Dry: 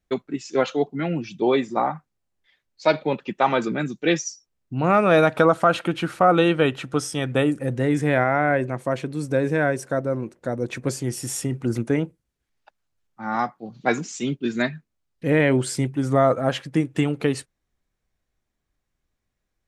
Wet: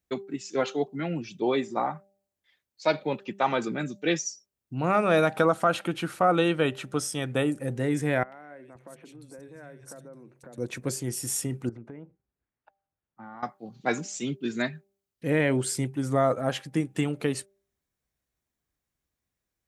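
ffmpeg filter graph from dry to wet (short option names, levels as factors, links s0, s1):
-filter_complex "[0:a]asettb=1/sr,asplit=3[s0][s1][s2];[s0]atrim=end=8.234[s3];[s1]atrim=start=8.23:end=10.58,asetpts=PTS-STARTPTS,afade=t=in:d=0.004:c=qsin,afade=t=out:st=2.346:d=0.004:c=qsin,acompressor=threshold=0.0126:ratio=5:attack=3.2:release=140:knee=1:detection=peak,acrossover=split=160|2400[s4][s5][s6];[s6]adelay=90[s7];[s4]adelay=520[s8];[s8][s5][s7]amix=inputs=3:normalize=0,atrim=end_sample=103635[s9];[s2]atrim=start=10.576[s10];[s3][s9]acrossfade=d=0.004:c1=hsin:c2=qsin[s11];[s11][s10]acrossfade=d=0.004:c1=qsin:c2=hsin,asettb=1/sr,asplit=3[s12][s13][s14];[s12]atrim=end=11.694[s15];[s13]atrim=start=11.69:end=13.43,asetpts=PTS-STARTPTS,afade=t=in:d=0.004:c=qsin,afade=t=out:st=1.736:d=0.004:c=qsin,lowpass=1700,acompressor=threshold=0.0178:ratio=5:attack=3.2:release=140:knee=1:detection=peak[s16];[s14]atrim=start=13.426[s17];[s15][s16]acrossfade=d=0.004:c1=hsin:c2=qsin[s18];[s18][s17]acrossfade=d=0.004:c1=qsin:c2=hsin,highpass=51,highshelf=f=8200:g=11,bandreject=f=196.9:t=h:w=4,bandreject=f=393.8:t=h:w=4,bandreject=f=590.7:t=h:w=4,bandreject=f=787.6:t=h:w=4,volume=0.531"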